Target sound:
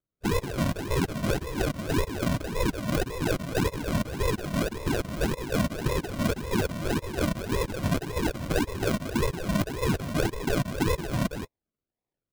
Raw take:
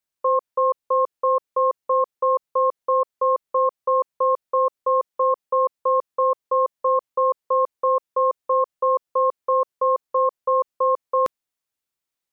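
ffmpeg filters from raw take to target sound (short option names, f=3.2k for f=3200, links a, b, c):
-filter_complex "[0:a]afftfilt=real='real(if(between(b,1,1008),(2*floor((b-1)/24)+1)*24-b,b),0)':imag='imag(if(between(b,1,1008),(2*floor((b-1)/24)+1)*24-b,b),0)*if(between(b,1,1008),-1,1)':win_size=2048:overlap=0.75,afftfilt=real='hypot(re,im)*cos(2*PI*random(0))':imag='hypot(re,im)*sin(2*PI*random(1))':win_size=512:overlap=0.75,asplit=2[a][b];[b]adelay=180,highpass=300,lowpass=3.4k,asoftclip=type=hard:threshold=-22dB,volume=-7dB[c];[a][c]amix=inputs=2:normalize=0,acrossover=split=520[d][e];[e]acrusher=samples=41:mix=1:aa=0.000001:lfo=1:lforange=24.6:lforate=1.8[f];[d][f]amix=inputs=2:normalize=0"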